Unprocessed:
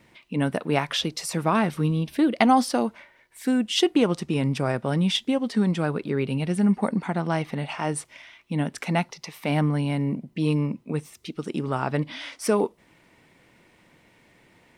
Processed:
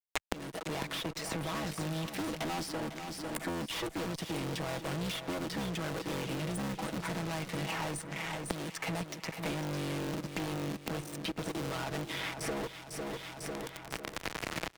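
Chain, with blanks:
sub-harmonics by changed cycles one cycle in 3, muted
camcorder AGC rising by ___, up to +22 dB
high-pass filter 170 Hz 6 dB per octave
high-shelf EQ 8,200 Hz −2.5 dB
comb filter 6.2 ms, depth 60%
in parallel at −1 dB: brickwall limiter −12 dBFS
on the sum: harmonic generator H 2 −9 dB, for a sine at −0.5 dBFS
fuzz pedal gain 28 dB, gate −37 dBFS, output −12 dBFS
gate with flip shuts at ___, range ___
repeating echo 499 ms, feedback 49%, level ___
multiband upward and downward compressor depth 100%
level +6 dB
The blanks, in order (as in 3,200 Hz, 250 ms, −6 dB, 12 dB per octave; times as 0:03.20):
5.5 dB per second, −20 dBFS, −27 dB, −12 dB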